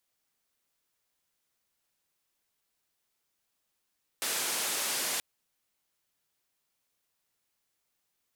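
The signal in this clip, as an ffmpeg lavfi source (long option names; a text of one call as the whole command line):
ffmpeg -f lavfi -i "anoisesrc=color=white:duration=0.98:sample_rate=44100:seed=1,highpass=frequency=260,lowpass=frequency=12000,volume=-24.5dB" out.wav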